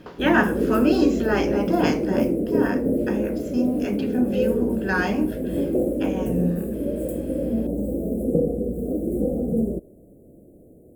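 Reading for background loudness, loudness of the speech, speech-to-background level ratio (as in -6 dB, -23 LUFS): -25.0 LUFS, -25.0 LUFS, 0.0 dB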